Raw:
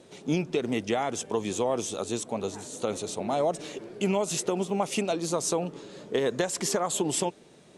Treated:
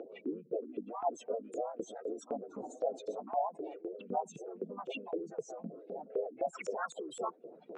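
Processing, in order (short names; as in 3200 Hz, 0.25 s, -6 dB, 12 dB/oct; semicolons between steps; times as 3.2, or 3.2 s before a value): spectral contrast raised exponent 3.7; in parallel at +1 dB: compressor 10:1, threshold -40 dBFS, peak gain reduction 17 dB; on the sum: limiter -27.5 dBFS, peak gain reduction 11.5 dB; reverse; upward compressor, threshold -40 dBFS; reverse; harmoniser +3 st -7 dB, +4 st -4 dB, +7 st -12 dB; LFO band-pass saw up 3.9 Hz 460–3100 Hz; speaker cabinet 200–6400 Hz, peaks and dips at 400 Hz -5 dB, 570 Hz -10 dB, 880 Hz -7 dB, 1400 Hz +7 dB, 2500 Hz +7 dB, 4700 Hz -9 dB; mismatched tape noise reduction encoder only; gain +8 dB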